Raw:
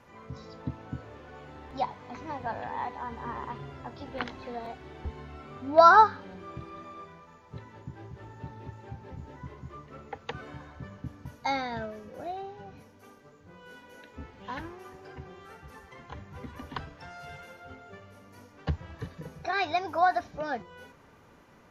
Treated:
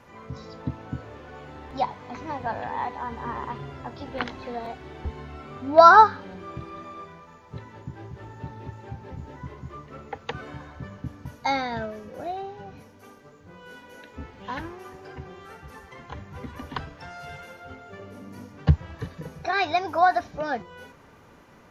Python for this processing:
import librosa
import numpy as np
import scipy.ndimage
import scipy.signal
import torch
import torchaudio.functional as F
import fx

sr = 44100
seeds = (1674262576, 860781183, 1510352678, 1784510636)

y = fx.peak_eq(x, sr, hz=fx.line((17.98, 380.0), (18.73, 110.0)), db=11.0, octaves=1.5, at=(17.98, 18.73), fade=0.02)
y = y * librosa.db_to_amplitude(4.5)